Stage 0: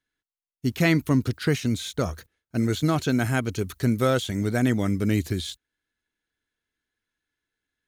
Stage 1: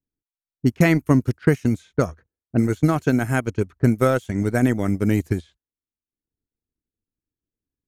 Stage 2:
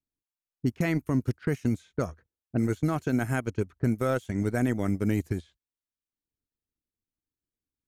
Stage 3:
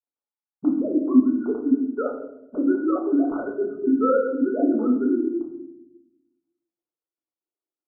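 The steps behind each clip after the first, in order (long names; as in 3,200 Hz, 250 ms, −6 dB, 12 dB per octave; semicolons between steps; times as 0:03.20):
low-pass that shuts in the quiet parts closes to 320 Hz, open at −20.5 dBFS; parametric band 3,800 Hz −10.5 dB 0.81 octaves; transient designer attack +5 dB, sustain −12 dB; level +2.5 dB
brickwall limiter −11 dBFS, peak gain reduction 8.5 dB; level −5.5 dB
three sine waves on the formant tracks; linear-phase brick-wall low-pass 1,500 Hz; convolution reverb RT60 0.90 s, pre-delay 4 ms, DRR −2.5 dB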